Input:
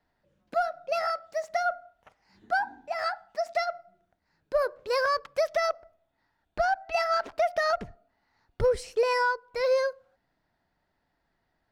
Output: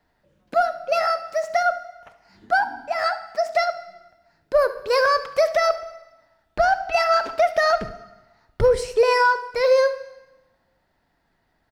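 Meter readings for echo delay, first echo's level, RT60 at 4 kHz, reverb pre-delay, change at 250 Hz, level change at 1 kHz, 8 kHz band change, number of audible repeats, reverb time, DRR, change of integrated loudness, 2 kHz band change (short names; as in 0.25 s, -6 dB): 70 ms, -16.5 dB, 1.0 s, 7 ms, +7.5 dB, +7.5 dB, +7.5 dB, 1, 1.1 s, 11.0 dB, +7.5 dB, +7.5 dB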